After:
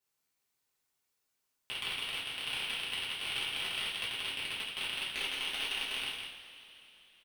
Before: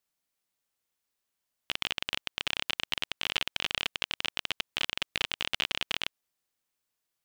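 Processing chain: 5.08–5.98 bell 120 Hz -11 dB 0.92 oct; in parallel at -0.5 dB: level quantiser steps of 24 dB; on the sum: soft clip -17.5 dBFS, distortion -11 dB; echo 0.169 s -5.5 dB; two-slope reverb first 0.45 s, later 3.6 s, from -18 dB, DRR -7.5 dB; gain -8.5 dB

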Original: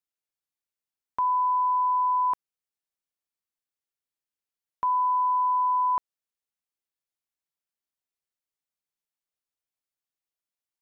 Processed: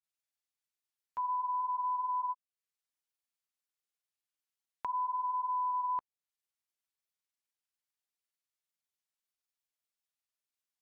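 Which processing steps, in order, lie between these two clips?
grains 0.1 s, grains 20/s, spray 36 ms, pitch spread up and down by 0 st; mismatched tape noise reduction encoder only; gain -8.5 dB

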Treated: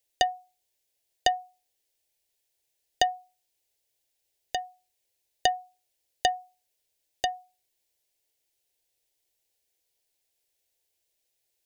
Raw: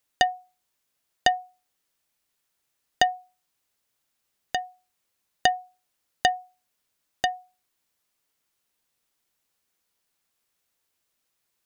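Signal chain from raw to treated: fixed phaser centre 500 Hz, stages 4

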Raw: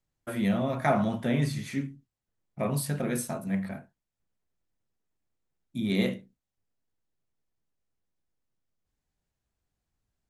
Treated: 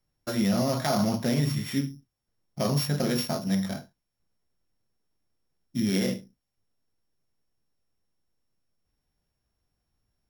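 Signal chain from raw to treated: sample sorter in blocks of 8 samples; limiter -21 dBFS, peak gain reduction 9.5 dB; gain +4.5 dB

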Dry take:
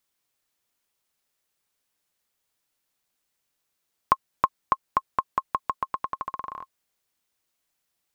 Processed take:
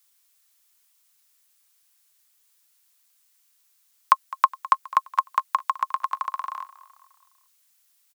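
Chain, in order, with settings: HPF 870 Hz 24 dB/oct; high shelf 4200 Hz +10.5 dB; on a send: feedback echo 0.208 s, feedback 51%, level -18.5 dB; on the sum: gain +4.5 dB

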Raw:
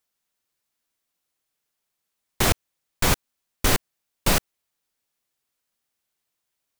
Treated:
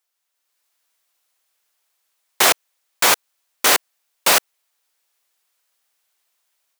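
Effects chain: HPF 570 Hz 12 dB/oct; AGC gain up to 7 dB; gain +2.5 dB

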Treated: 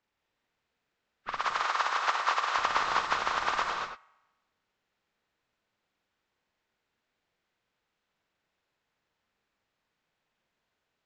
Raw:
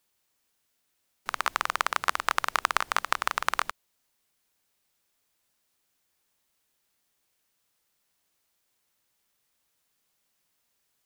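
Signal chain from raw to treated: nonlinear frequency compression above 1100 Hz 1.5:1; 1.4–2.58 HPF 490 Hz 12 dB/oct; on a send: band-limited delay 66 ms, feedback 67%, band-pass 1300 Hz, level -23.5 dB; on the sum: non-linear reverb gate 0.26 s rising, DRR 2 dB; low-pass opened by the level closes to 2000 Hz, open at -25.5 dBFS

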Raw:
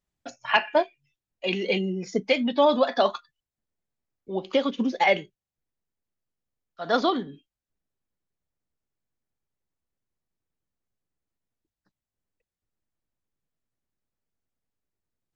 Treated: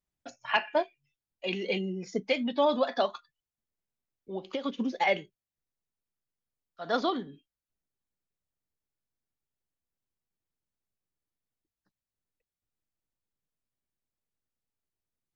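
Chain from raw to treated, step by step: 3.05–4.64 compressor 5:1, threshold -25 dBFS, peak gain reduction 8 dB; gain -5.5 dB

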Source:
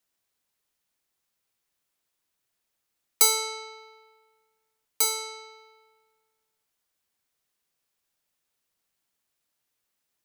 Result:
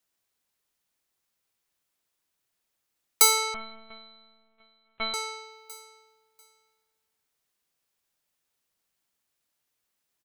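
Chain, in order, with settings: dynamic EQ 1500 Hz, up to +6 dB, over -44 dBFS, Q 0.79; feedback echo 0.693 s, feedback 21%, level -22 dB; 3.54–5.14 LPC vocoder at 8 kHz pitch kept

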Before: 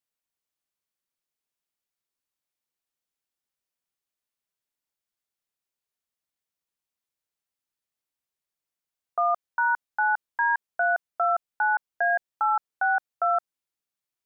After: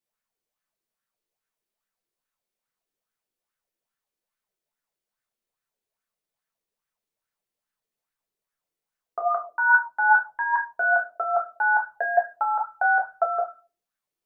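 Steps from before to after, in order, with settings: shoebox room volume 160 m³, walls furnished, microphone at 1.5 m; LFO bell 2.4 Hz 330–1600 Hz +12 dB; gain -3 dB

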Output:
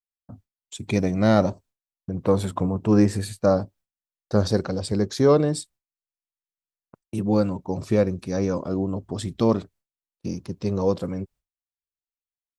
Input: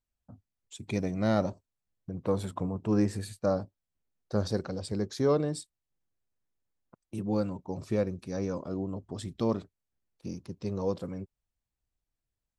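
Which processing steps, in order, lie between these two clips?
expander -54 dBFS; gain +8.5 dB

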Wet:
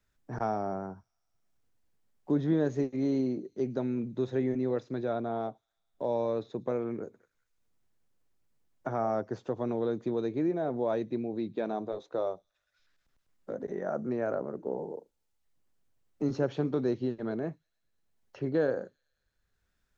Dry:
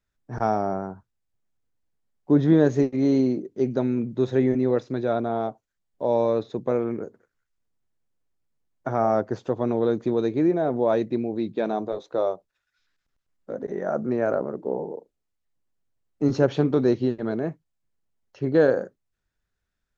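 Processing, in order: thin delay 0.108 s, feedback 66%, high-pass 5100 Hz, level -20 dB; three-band squash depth 40%; gain -8 dB

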